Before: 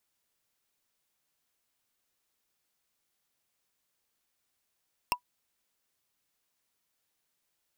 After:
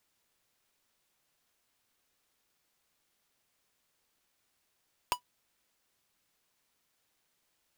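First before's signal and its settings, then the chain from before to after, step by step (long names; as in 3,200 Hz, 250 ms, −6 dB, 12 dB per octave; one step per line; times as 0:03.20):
struck wood, lowest mode 982 Hz, decay 0.09 s, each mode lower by 0.5 dB, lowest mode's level −20 dB
each half-wave held at its own peak
brickwall limiter −18 dBFS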